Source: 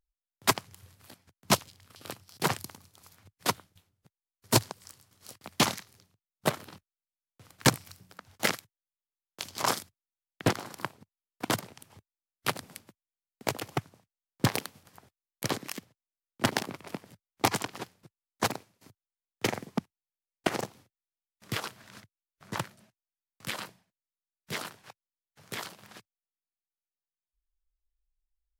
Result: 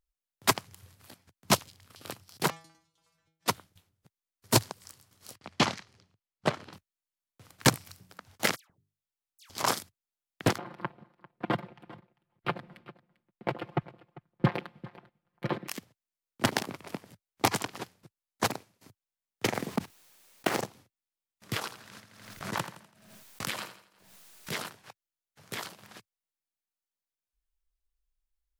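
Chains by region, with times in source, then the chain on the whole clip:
0:02.50–0:03.48: low-pass filter 7,200 Hz + stiff-string resonator 160 Hz, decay 0.46 s, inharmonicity 0.002
0:05.36–0:06.73: low-pass filter 5,000 Hz + notch filter 3,700 Hz, Q 28
0:08.56–0:09.50: mains-hum notches 50/100/150/200/250/300/350/400 Hz + downward compressor 5 to 1, threshold −54 dBFS + all-pass dispersion lows, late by 137 ms, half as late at 1,600 Hz
0:10.58–0:15.68: high-frequency loss of the air 470 metres + comb filter 5.7 ms, depth 77% + single-tap delay 396 ms −19.5 dB
0:19.55–0:20.59: gap after every zero crossing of 0.064 ms + low-shelf EQ 100 Hz −10.5 dB + envelope flattener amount 50%
0:21.61–0:24.63: low-shelf EQ 170 Hz −4 dB + repeating echo 83 ms, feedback 40%, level −11.5 dB + background raised ahead of every attack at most 57 dB per second
whole clip: no processing

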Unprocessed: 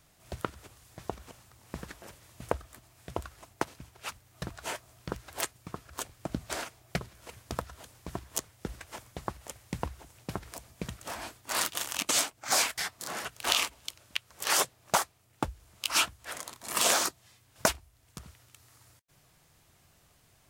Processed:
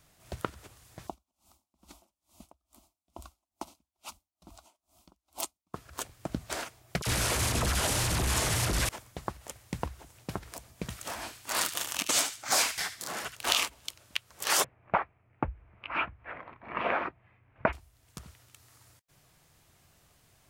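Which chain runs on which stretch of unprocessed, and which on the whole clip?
0:01.07–0:05.74: phaser with its sweep stopped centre 460 Hz, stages 6 + tremolo with a sine in dB 2.3 Hz, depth 35 dB
0:07.02–0:08.89: linear delta modulator 64 kbit/s, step −22.5 dBFS + all-pass dispersion lows, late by 50 ms, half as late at 1,300 Hz + flutter between parallel walls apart 9.9 metres, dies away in 0.33 s
0:10.90–0:13.36: delay with a high-pass on its return 74 ms, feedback 33%, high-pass 1,800 Hz, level −10 dB + one half of a high-frequency compander encoder only
0:14.64–0:17.73: elliptic low-pass filter 2,400 Hz, stop band 80 dB + low-shelf EQ 170 Hz +4 dB
whole clip: no processing

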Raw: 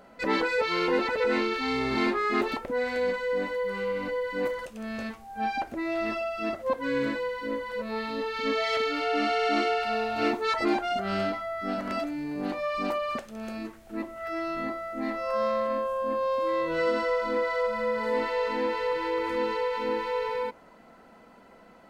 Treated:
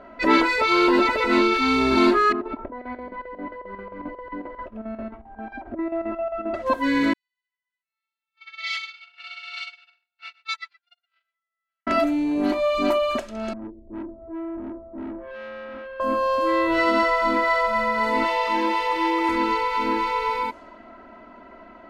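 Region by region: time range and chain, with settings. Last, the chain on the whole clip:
0:02.32–0:06.54: low-pass filter 1,100 Hz + downward compressor 2.5 to 1, threshold −36 dBFS + square-wave tremolo 7.5 Hz, depth 65%, duty 70%
0:07.13–0:11.87: Bessel high-pass filter 2,800 Hz, order 4 + noise gate −38 dBFS, range −47 dB + single-tap delay 120 ms −21 dB
0:13.53–0:16.00: Butterworth low-pass 540 Hz 48 dB per octave + tube saturation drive 40 dB, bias 0.45
0:18.24–0:19.29: low-shelf EQ 210 Hz −10 dB + notch filter 2,400 Hz, Q 15 + comb filter 5.7 ms, depth 64%
whole clip: low-pass that shuts in the quiet parts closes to 2,300 Hz, open at −27 dBFS; comb filter 3.1 ms, depth 77%; level +6 dB

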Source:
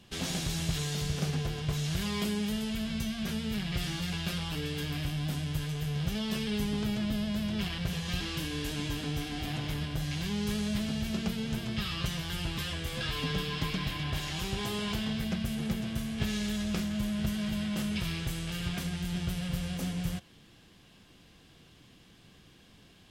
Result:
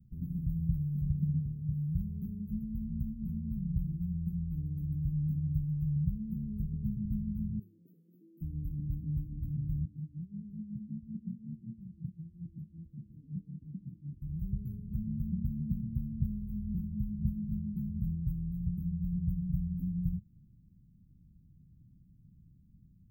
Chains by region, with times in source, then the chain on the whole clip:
0:01.39–0:01.95: variable-slope delta modulation 64 kbit/s + high-pass filter 130 Hz 6 dB per octave
0:07.59–0:08.41: Butterworth high-pass 330 Hz + tilt shelving filter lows +7.5 dB, about 750 Hz
0:09.85–0:14.22: band-pass filter 160–6,600 Hz + flat-topped bell 570 Hz −8 dB 1.2 octaves + phaser with staggered stages 5.4 Hz
whole clip: inverse Chebyshev band-stop filter 760–7,700 Hz, stop band 70 dB; hum removal 103.2 Hz, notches 2; level +2.5 dB

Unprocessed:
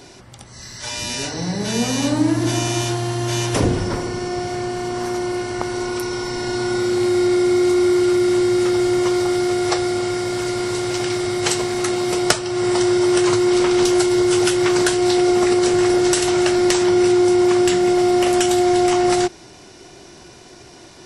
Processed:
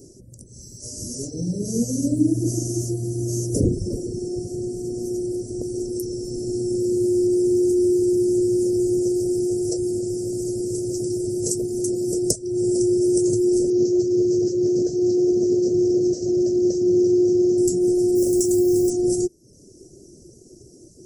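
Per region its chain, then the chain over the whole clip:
0:13.70–0:17.58: linear delta modulator 32 kbit/s, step −18 dBFS + high-pass filter 85 Hz + parametric band 4,700 Hz −4 dB 2.1 octaves
0:18.15–0:18.90: double-tracking delay 19 ms −8.5 dB + noise that follows the level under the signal 23 dB
whole clip: reverb reduction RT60 0.67 s; inverse Chebyshev band-stop filter 830–3,700 Hz, stop band 40 dB

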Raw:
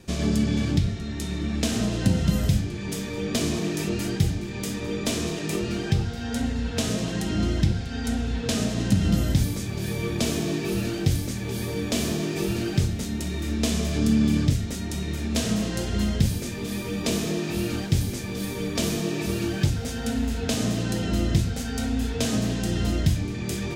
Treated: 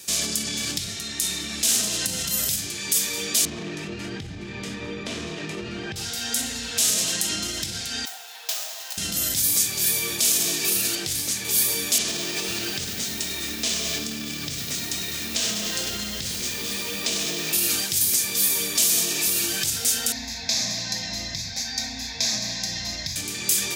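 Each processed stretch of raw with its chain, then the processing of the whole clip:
0:03.45–0:05.96: low-pass filter 2,100 Hz + low-shelf EQ 240 Hz +10.5 dB
0:08.05–0:08.98: running median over 5 samples + four-pole ladder high-pass 680 Hz, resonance 55%
0:10.95–0:11.45: high-shelf EQ 8,000 Hz −10 dB + highs frequency-modulated by the lows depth 0.3 ms
0:11.98–0:17.53: high-frequency loss of the air 110 metres + feedback echo at a low word length 101 ms, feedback 80%, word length 8 bits, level −10.5 dB
0:20.12–0:23.16: low-pass filter 6,000 Hz + phaser with its sweep stopped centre 2,000 Hz, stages 8
whole clip: high-shelf EQ 3,900 Hz +9.5 dB; brickwall limiter −18 dBFS; spectral tilt +4 dB per octave

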